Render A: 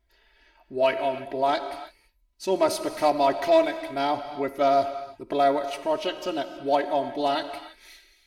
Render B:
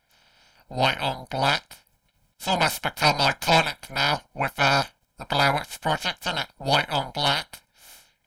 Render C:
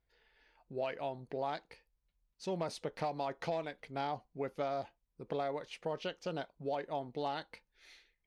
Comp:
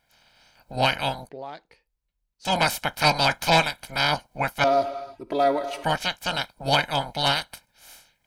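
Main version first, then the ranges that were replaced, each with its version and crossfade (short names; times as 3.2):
B
1.29–2.45 from C
4.64–5.84 from A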